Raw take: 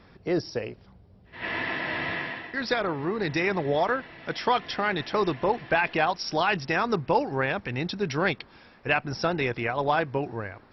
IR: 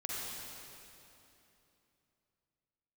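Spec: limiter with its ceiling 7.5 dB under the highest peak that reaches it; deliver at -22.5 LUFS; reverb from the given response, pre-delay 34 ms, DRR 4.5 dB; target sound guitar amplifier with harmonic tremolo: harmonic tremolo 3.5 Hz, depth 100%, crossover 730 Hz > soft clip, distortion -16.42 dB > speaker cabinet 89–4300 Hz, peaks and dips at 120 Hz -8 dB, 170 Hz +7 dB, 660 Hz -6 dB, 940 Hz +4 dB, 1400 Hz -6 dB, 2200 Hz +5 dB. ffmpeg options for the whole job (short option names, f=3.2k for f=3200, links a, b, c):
-filter_complex "[0:a]alimiter=limit=-17.5dB:level=0:latency=1,asplit=2[a][b];[1:a]atrim=start_sample=2205,adelay=34[c];[b][c]afir=irnorm=-1:irlink=0,volume=-7dB[d];[a][d]amix=inputs=2:normalize=0,acrossover=split=730[e][f];[e]aeval=exprs='val(0)*(1-1/2+1/2*cos(2*PI*3.5*n/s))':c=same[g];[f]aeval=exprs='val(0)*(1-1/2-1/2*cos(2*PI*3.5*n/s))':c=same[h];[g][h]amix=inputs=2:normalize=0,asoftclip=threshold=-24.5dB,highpass=89,equalizer=f=120:t=q:w=4:g=-8,equalizer=f=170:t=q:w=4:g=7,equalizer=f=660:t=q:w=4:g=-6,equalizer=f=940:t=q:w=4:g=4,equalizer=f=1.4k:t=q:w=4:g=-6,equalizer=f=2.2k:t=q:w=4:g=5,lowpass=f=4.3k:w=0.5412,lowpass=f=4.3k:w=1.3066,volume=11.5dB"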